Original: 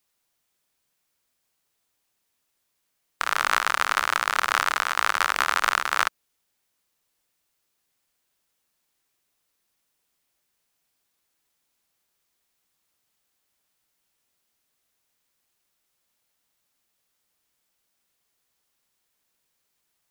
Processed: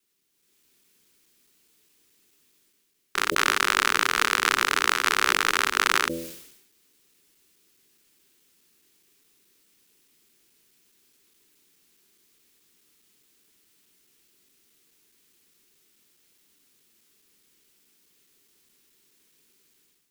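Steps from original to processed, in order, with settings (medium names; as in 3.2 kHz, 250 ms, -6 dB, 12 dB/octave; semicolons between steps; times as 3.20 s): time reversed locally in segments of 210 ms; FFT filter 110 Hz 0 dB, 200 Hz +7 dB, 410 Hz +10 dB, 610 Hz -8 dB, 2.6 kHz +3 dB; level rider gain up to 11 dB; de-hum 83.29 Hz, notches 7; decay stretcher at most 63 dB/s; trim -2.5 dB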